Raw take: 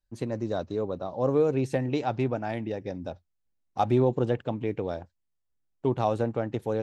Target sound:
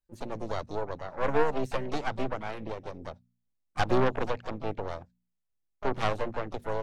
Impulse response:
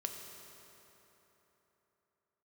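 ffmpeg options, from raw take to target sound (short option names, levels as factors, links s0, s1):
-filter_complex "[0:a]aeval=exprs='0.282*(cos(1*acos(clip(val(0)/0.282,-1,1)))-cos(1*PI/2))+0.0126*(cos(3*acos(clip(val(0)/0.282,-1,1)))-cos(3*PI/2))+0.1*(cos(6*acos(clip(val(0)/0.282,-1,1)))-cos(6*PI/2))+0.0126*(cos(8*acos(clip(val(0)/0.282,-1,1)))-cos(8*PI/2))':c=same,asplit=2[s0][s1];[s1]asetrate=66075,aresample=44100,atempo=0.66742,volume=0.316[s2];[s0][s2]amix=inputs=2:normalize=0,bandreject=f=59.85:t=h:w=4,bandreject=f=119.7:t=h:w=4,bandreject=f=179.55:t=h:w=4,bandreject=f=239.4:t=h:w=4,volume=0.596"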